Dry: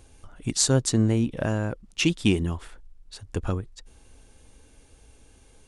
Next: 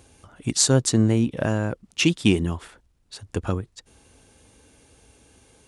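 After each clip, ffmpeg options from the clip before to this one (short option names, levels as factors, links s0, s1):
-af "highpass=81,volume=1.41"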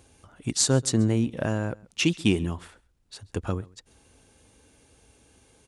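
-af "aecho=1:1:134:0.0668,volume=0.668"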